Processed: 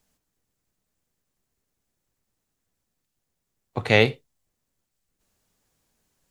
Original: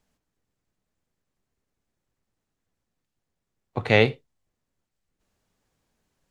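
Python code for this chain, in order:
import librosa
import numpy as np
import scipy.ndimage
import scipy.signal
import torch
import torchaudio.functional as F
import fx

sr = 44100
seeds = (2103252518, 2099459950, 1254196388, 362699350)

y = fx.high_shelf(x, sr, hz=5600.0, db=10.5)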